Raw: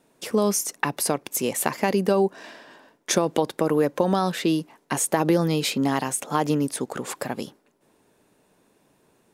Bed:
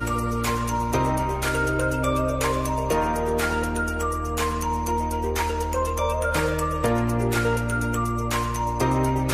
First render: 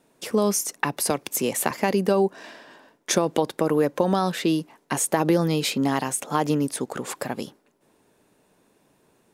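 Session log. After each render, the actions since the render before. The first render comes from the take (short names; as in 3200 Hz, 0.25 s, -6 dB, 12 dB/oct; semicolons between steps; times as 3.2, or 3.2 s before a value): 1.1–1.71 three-band squash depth 40%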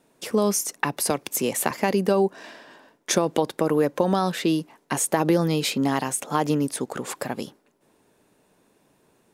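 nothing audible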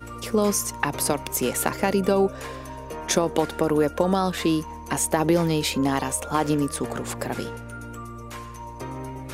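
add bed -12.5 dB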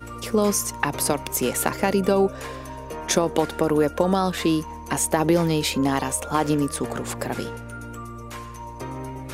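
gain +1 dB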